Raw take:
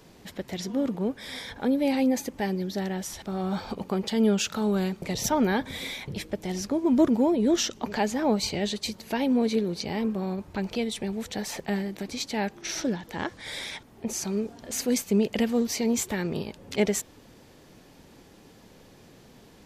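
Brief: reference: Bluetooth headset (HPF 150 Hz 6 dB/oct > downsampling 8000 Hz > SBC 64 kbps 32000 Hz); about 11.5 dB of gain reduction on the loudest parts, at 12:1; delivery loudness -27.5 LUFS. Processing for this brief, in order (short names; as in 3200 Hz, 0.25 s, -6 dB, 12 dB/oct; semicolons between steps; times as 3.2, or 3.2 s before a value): compressor 12:1, threshold -28 dBFS; HPF 150 Hz 6 dB/oct; downsampling 8000 Hz; gain +8 dB; SBC 64 kbps 32000 Hz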